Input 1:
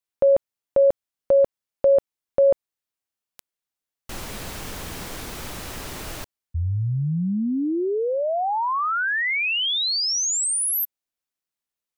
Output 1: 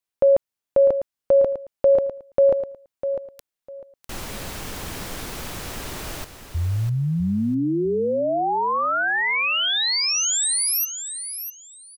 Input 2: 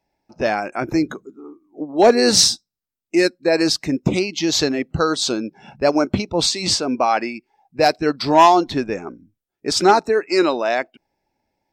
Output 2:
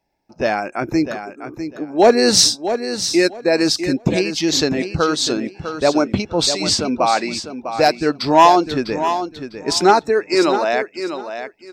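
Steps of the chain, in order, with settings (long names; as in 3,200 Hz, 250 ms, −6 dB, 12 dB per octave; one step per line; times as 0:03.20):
repeating echo 651 ms, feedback 21%, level −9.5 dB
level +1 dB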